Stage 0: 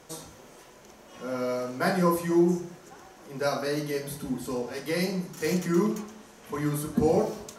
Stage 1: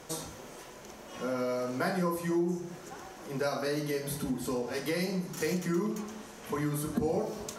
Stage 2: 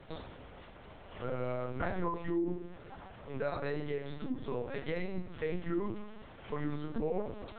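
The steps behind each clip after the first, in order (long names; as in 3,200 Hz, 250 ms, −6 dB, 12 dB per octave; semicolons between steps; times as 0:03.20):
downward compressor 3 to 1, threshold −34 dBFS, peak gain reduction 12.5 dB; level +3.5 dB
linear-prediction vocoder at 8 kHz pitch kept; level −3.5 dB; AAC 96 kbit/s 48,000 Hz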